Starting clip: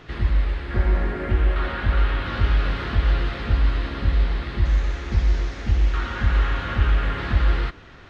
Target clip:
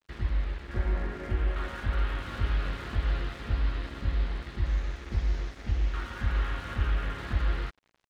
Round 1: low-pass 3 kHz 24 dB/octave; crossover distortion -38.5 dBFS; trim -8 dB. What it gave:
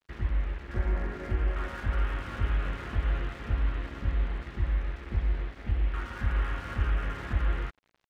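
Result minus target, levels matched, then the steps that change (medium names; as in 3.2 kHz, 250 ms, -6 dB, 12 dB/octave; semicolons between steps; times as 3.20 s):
4 kHz band -4.0 dB
remove: low-pass 3 kHz 24 dB/octave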